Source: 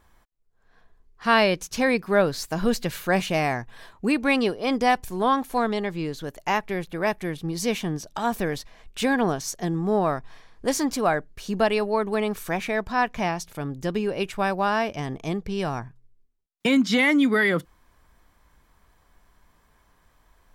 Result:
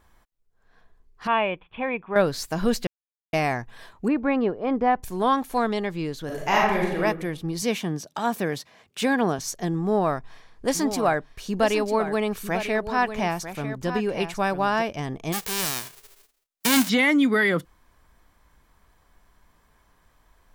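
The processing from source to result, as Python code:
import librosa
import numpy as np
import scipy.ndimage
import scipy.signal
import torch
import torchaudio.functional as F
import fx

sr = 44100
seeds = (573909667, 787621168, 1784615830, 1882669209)

y = fx.cheby_ripple(x, sr, hz=3500.0, ripple_db=9, at=(1.27, 2.16))
y = fx.lowpass(y, sr, hz=1400.0, slope=12, at=(4.08, 5.03))
y = fx.reverb_throw(y, sr, start_s=6.25, length_s=0.75, rt60_s=0.85, drr_db=-4.0)
y = fx.highpass(y, sr, hz=110.0, slope=24, at=(7.62, 9.39))
y = fx.echo_single(y, sr, ms=947, db=-10.0, at=(10.74, 14.81), fade=0.02)
y = fx.envelope_flatten(y, sr, power=0.1, at=(15.32, 16.88), fade=0.02)
y = fx.edit(y, sr, fx.silence(start_s=2.87, length_s=0.46), tone=tone)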